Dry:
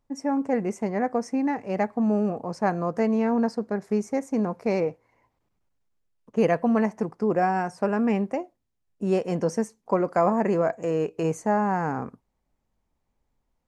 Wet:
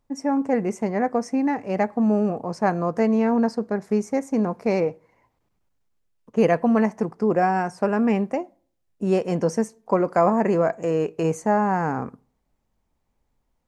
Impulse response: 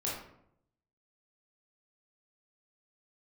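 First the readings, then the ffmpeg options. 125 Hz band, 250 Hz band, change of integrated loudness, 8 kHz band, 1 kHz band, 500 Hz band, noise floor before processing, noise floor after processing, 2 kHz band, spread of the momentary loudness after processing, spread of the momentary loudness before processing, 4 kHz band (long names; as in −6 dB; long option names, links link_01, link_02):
+3.0 dB, +3.0 dB, +3.0 dB, +2.5 dB, +3.0 dB, +3.0 dB, −76 dBFS, −73 dBFS, +2.5 dB, 7 LU, 7 LU, +3.0 dB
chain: -filter_complex "[0:a]asplit=2[link_01][link_02];[1:a]atrim=start_sample=2205,asetrate=70560,aresample=44100[link_03];[link_02][link_03]afir=irnorm=-1:irlink=0,volume=-24dB[link_04];[link_01][link_04]amix=inputs=2:normalize=0,volume=2.5dB"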